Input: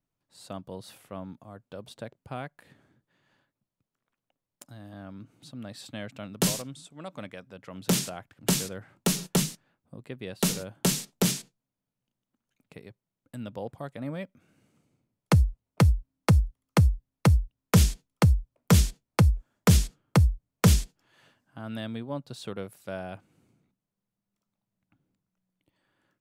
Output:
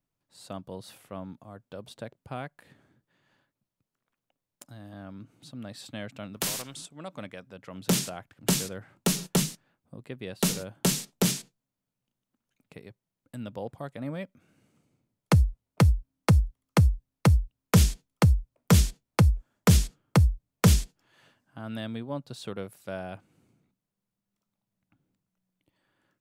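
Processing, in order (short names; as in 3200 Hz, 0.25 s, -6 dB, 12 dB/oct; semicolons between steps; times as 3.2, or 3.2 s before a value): 6.36–6.86 spectral compressor 2:1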